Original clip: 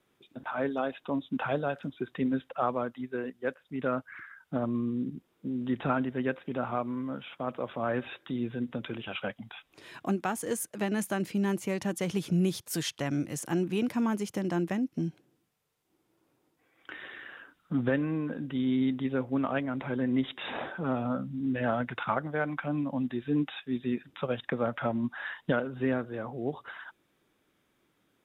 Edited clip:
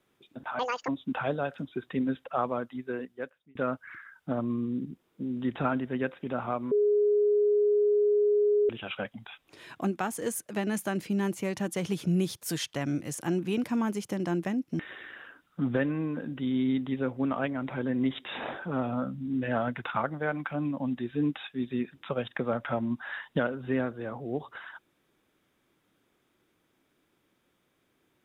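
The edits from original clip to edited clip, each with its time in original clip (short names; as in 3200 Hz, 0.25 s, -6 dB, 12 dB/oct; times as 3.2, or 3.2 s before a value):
0.59–1.13 speed 184%
3.22–3.8 fade out
6.96–8.94 bleep 415 Hz -20.5 dBFS
15.04–16.92 cut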